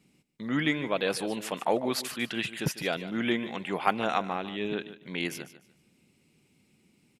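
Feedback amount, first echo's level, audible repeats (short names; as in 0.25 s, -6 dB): 24%, -14.0 dB, 2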